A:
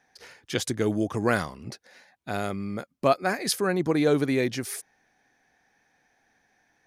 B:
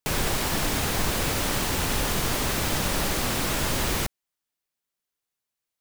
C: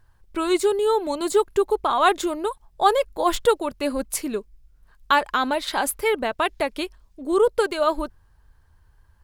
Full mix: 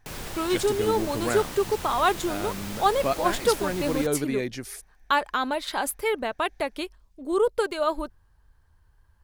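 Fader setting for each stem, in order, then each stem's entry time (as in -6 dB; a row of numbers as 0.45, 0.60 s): -4.5, -11.0, -4.0 dB; 0.00, 0.00, 0.00 s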